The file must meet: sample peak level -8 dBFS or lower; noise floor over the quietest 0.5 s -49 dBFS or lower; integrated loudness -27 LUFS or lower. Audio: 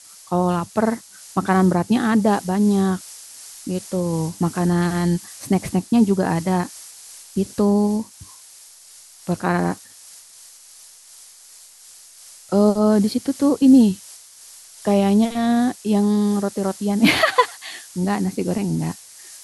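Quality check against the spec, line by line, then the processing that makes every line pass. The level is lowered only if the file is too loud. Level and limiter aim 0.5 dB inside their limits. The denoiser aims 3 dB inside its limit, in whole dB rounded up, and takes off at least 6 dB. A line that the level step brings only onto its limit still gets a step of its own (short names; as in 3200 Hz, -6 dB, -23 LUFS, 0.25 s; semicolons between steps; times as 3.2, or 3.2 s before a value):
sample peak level -3.5 dBFS: fail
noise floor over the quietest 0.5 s -46 dBFS: fail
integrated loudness -19.5 LUFS: fail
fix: gain -8 dB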